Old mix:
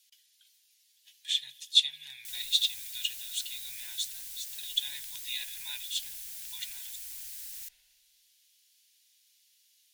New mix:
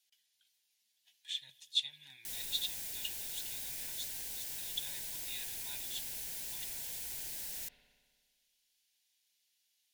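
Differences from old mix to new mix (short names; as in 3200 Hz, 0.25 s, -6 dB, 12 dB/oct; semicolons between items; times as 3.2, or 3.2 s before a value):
speech -12.0 dB; master: remove passive tone stack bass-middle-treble 10-0-10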